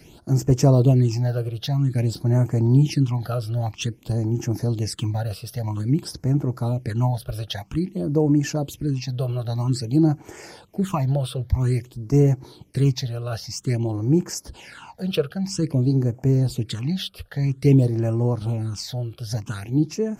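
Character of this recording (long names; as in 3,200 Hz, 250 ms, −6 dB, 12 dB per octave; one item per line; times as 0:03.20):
phaser sweep stages 8, 0.51 Hz, lowest notch 260–3,800 Hz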